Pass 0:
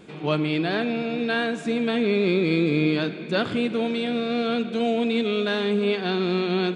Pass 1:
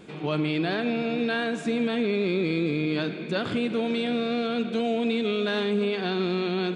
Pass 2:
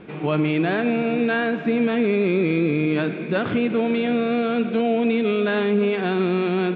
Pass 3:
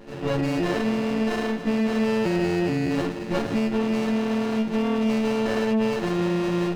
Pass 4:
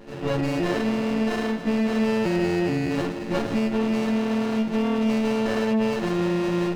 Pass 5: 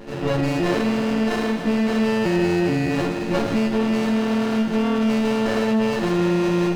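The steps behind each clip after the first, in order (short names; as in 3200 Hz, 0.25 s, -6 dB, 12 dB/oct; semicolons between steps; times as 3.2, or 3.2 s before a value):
limiter -17.5 dBFS, peak gain reduction 7 dB
LPF 2800 Hz 24 dB/oct; gain +5.5 dB
frequency quantiser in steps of 4 st; spectral gate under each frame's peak -20 dB strong; running maximum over 33 samples; gain -2 dB
reverb RT60 1.1 s, pre-delay 60 ms, DRR 16 dB
in parallel at 0 dB: limiter -24 dBFS, peak gain reduction 10 dB; on the sum: thinning echo 81 ms, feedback 76%, level -11 dB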